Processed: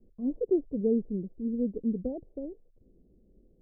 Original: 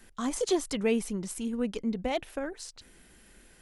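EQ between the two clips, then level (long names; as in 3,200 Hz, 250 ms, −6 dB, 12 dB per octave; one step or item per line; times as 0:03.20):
Butterworth low-pass 530 Hz 36 dB per octave
dynamic equaliser 280 Hz, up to +4 dB, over −35 dBFS, Q 0.72
−2.0 dB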